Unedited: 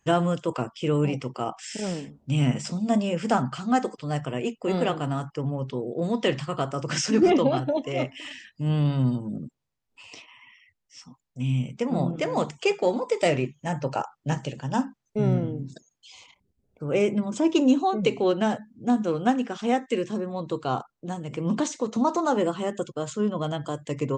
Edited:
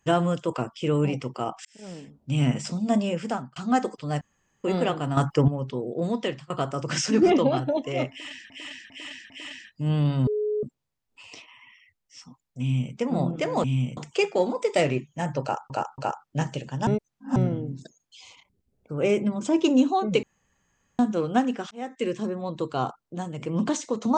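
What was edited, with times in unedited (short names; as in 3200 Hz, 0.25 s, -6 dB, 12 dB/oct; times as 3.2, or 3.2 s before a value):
1.65–2.43 fade in
3.09–3.56 fade out
4.21–4.64 room tone
5.17–5.48 gain +9.5 dB
6.08–6.5 fade out, to -23 dB
8.1–8.5 loop, 4 plays
9.07–9.43 bleep 422 Hz -23 dBFS
11.41–11.74 copy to 12.44
13.89–14.17 loop, 3 plays
14.78–15.27 reverse
18.14–18.9 room tone
19.62–20.02 fade in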